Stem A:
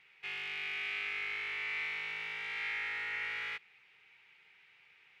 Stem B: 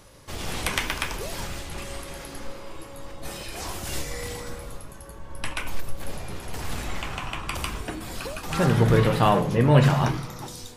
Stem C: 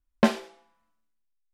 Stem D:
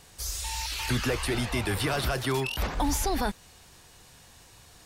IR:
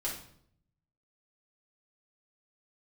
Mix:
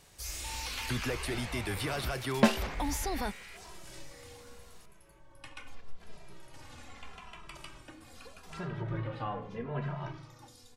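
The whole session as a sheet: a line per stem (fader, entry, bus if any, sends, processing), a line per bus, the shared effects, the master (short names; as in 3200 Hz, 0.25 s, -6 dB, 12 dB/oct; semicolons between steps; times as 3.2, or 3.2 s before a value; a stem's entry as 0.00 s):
-12.0 dB, 0.00 s, no send, dry
-14.0 dB, 0.00 s, send -15.5 dB, low shelf 390 Hz -3.5 dB; treble ducked by the level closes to 2100 Hz, closed at -17 dBFS; endless flanger 2.6 ms -0.81 Hz
-3.0 dB, 2.20 s, no send, high shelf 5100 Hz +6 dB
-6.5 dB, 0.00 s, no send, dry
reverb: on, RT60 0.65 s, pre-delay 3 ms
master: dry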